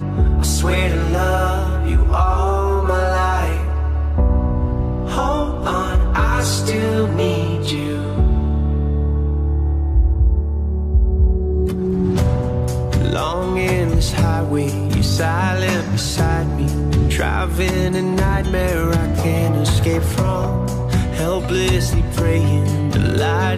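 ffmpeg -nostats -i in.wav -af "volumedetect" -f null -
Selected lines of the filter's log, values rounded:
mean_volume: -16.6 dB
max_volume: -5.6 dB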